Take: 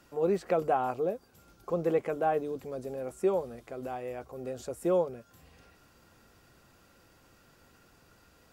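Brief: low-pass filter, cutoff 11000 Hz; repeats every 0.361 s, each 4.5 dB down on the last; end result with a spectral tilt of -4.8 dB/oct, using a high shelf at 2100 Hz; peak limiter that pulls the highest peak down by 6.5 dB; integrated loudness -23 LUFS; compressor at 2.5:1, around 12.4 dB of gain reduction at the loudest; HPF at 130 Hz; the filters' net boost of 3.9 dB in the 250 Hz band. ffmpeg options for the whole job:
-af "highpass=130,lowpass=11k,equalizer=f=250:t=o:g=6.5,highshelf=f=2.1k:g=5,acompressor=threshold=-40dB:ratio=2.5,alimiter=level_in=8dB:limit=-24dB:level=0:latency=1,volume=-8dB,aecho=1:1:361|722|1083|1444|1805|2166|2527|2888|3249:0.596|0.357|0.214|0.129|0.0772|0.0463|0.0278|0.0167|0.01,volume=18dB"

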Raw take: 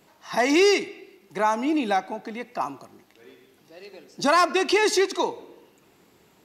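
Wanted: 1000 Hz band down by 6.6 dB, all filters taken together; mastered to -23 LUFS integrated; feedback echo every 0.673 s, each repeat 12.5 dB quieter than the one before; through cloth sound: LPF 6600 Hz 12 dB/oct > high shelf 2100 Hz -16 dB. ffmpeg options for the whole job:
-af "lowpass=6.6k,equalizer=f=1k:t=o:g=-5,highshelf=f=2.1k:g=-16,aecho=1:1:673|1346|2019:0.237|0.0569|0.0137,volume=4dB"

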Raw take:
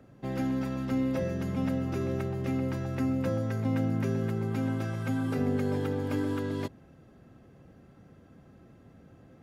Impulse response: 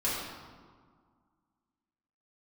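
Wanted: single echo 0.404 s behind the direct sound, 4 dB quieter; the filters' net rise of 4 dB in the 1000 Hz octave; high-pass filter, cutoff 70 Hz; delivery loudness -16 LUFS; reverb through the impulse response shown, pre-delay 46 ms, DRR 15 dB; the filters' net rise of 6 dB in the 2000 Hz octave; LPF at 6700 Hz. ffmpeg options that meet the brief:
-filter_complex "[0:a]highpass=70,lowpass=6.7k,equalizer=f=1k:t=o:g=3.5,equalizer=f=2k:t=o:g=6.5,aecho=1:1:404:0.631,asplit=2[a][b];[1:a]atrim=start_sample=2205,adelay=46[c];[b][c]afir=irnorm=-1:irlink=0,volume=-23.5dB[d];[a][d]amix=inputs=2:normalize=0,volume=13.5dB"

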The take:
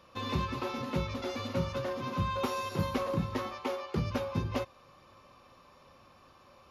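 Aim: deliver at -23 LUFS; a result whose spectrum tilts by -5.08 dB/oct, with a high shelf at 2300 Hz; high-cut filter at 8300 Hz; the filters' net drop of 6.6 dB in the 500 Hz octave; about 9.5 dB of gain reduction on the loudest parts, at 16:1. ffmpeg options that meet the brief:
-af "lowpass=8.3k,equalizer=f=500:t=o:g=-7.5,highshelf=f=2.3k:g=-5,acompressor=threshold=-36dB:ratio=16,volume=18.5dB"

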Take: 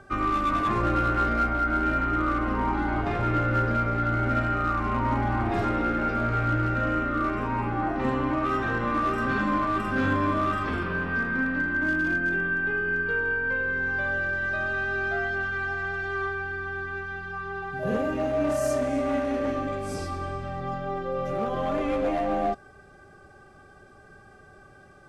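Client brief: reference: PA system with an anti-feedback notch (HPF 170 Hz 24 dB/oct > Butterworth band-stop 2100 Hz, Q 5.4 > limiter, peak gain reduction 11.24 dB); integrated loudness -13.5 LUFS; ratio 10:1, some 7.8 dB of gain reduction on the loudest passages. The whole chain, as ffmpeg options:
-af "acompressor=threshold=-29dB:ratio=10,highpass=f=170:w=0.5412,highpass=f=170:w=1.3066,asuperstop=centerf=2100:order=8:qfactor=5.4,volume=26.5dB,alimiter=limit=-7dB:level=0:latency=1"

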